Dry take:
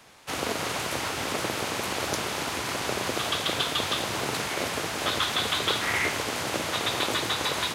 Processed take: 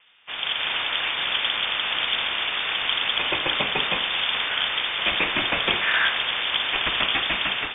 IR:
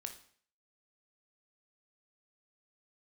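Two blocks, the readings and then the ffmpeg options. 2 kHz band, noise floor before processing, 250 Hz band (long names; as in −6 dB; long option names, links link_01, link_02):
+7.0 dB, −32 dBFS, −4.0 dB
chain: -filter_complex "[0:a]acrossover=split=100[link_01][link_02];[link_02]adynamicsmooth=sensitivity=7:basefreq=2900[link_03];[link_01][link_03]amix=inputs=2:normalize=0,lowpass=frequency=3100:width_type=q:width=0.5098,lowpass=frequency=3100:width_type=q:width=0.6013,lowpass=frequency=3100:width_type=q:width=0.9,lowpass=frequency=3100:width_type=q:width=2.563,afreqshift=-3700,dynaudnorm=framelen=180:gausssize=5:maxgain=8dB,volume=-2dB"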